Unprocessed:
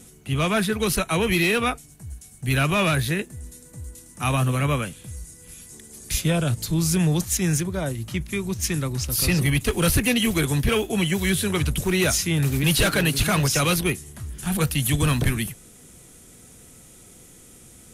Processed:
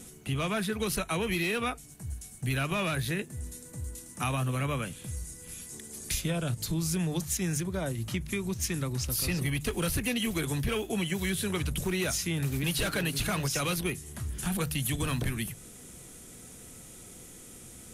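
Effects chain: hum notches 50/100/150 Hz; compression 3:1, threshold -30 dBFS, peak gain reduction 10.5 dB

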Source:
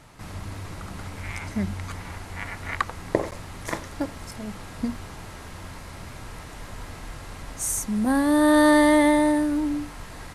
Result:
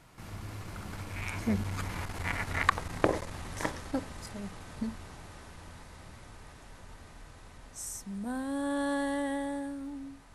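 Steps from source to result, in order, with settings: Doppler pass-by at 2.42 s, 23 m/s, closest 21 m; transformer saturation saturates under 990 Hz; trim +2 dB

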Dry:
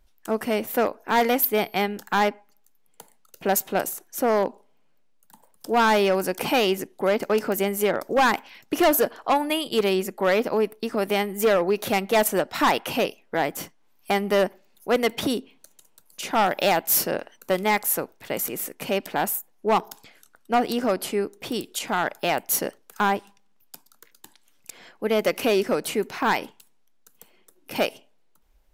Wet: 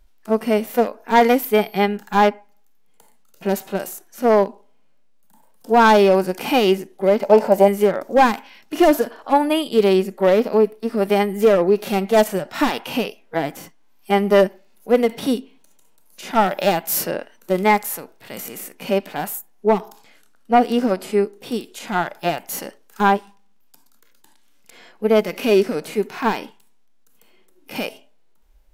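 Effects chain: 7.23–7.68 s: high-order bell 720 Hz +13 dB 1.2 oct; harmonic-percussive split percussive -17 dB; trim +7.5 dB

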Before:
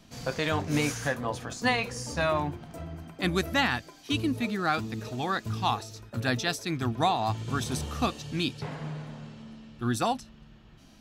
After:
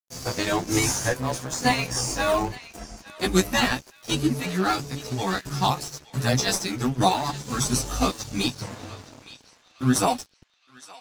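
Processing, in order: short-time spectra conjugated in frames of 32 ms; high-order bell 7.9 kHz +11.5 dB; in parallel at -9 dB: decimation with a swept rate 21×, swing 60% 3 Hz; on the sum: granulator 187 ms, grains 16 per s, spray 10 ms, pitch spread up and down by 0 st; crossover distortion -49 dBFS; on a send: band-passed feedback delay 866 ms, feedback 42%, band-pass 2.9 kHz, level -16 dB; on the sum: trim +9 dB

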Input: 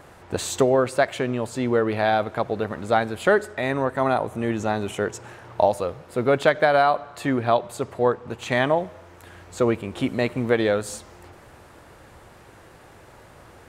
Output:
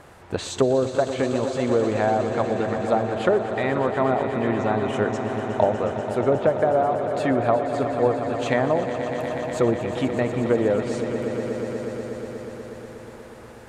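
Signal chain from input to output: low-pass that closes with the level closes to 650 Hz, closed at -15 dBFS; echo with a slow build-up 121 ms, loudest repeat 5, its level -12 dB

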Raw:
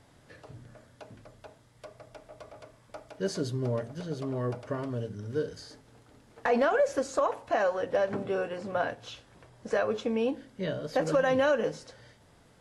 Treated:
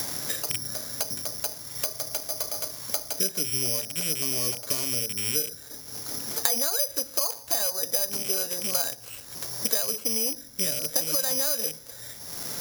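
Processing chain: rattle on loud lows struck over -41 dBFS, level -31 dBFS; treble shelf 2.7 kHz +10.5 dB; careless resampling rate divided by 8×, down filtered, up zero stuff; three bands compressed up and down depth 100%; trim -7.5 dB

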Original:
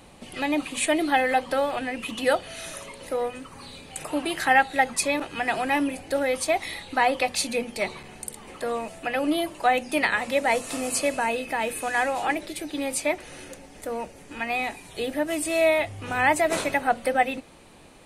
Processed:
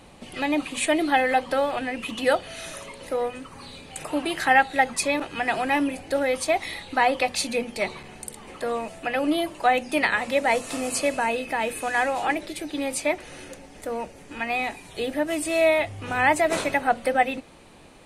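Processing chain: treble shelf 10 kHz -6 dB; trim +1 dB

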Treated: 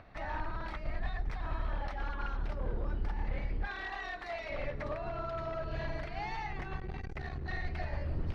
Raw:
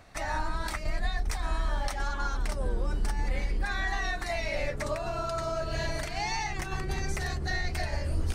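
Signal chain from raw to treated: one-sided wavefolder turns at -27 dBFS; 3.67–4.50 s: tone controls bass -13 dB, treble +5 dB; upward compressor, threshold -45 dBFS; distance through air 330 m; thinning echo 110 ms, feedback 78%, level -21 dB; 6.77–7.49 s: transformer saturation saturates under 140 Hz; trim -4 dB

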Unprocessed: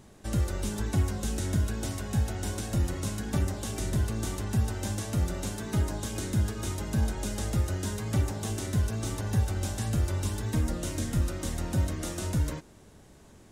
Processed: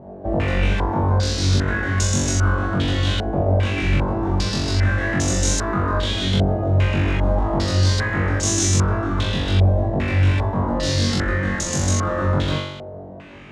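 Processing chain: one-sided wavefolder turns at -26.5 dBFS; high-pass 57 Hz; peak limiter -26 dBFS, peak gain reduction 7.5 dB; on a send: flutter echo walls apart 3.6 m, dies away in 0.89 s; on the sum: step-sequenced low-pass 2.5 Hz 670–6500 Hz; trim +9 dB

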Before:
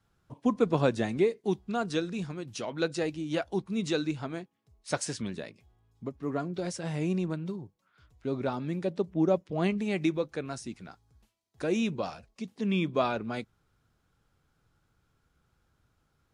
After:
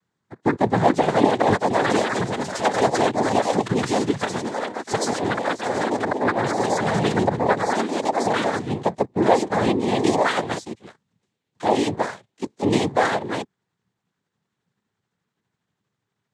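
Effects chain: pitch bend over the whole clip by +4 st starting unshifted; ever faster or slower copies 529 ms, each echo +5 st, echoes 3; dynamic bell 630 Hz, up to +4 dB, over -43 dBFS, Q 1.4; waveshaping leveller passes 2; noise-vocoded speech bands 6; trim +1 dB

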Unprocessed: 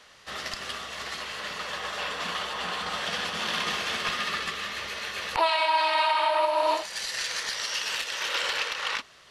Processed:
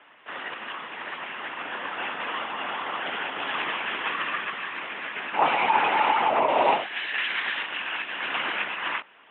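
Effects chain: LPC vocoder at 8 kHz whisper; mistuned SSB -54 Hz 300–3000 Hz; 6.48–7.63 s: treble shelf 2.1 kHz +11 dB; trim +2.5 dB

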